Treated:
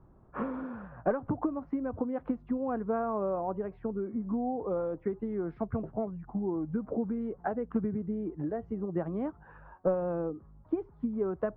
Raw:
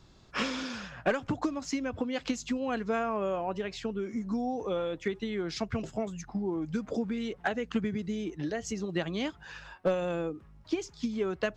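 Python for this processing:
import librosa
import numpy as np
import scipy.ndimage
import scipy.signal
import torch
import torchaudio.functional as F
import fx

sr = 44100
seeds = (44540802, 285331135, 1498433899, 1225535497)

y = scipy.signal.sosfilt(scipy.signal.butter(4, 1200.0, 'lowpass', fs=sr, output='sos'), x)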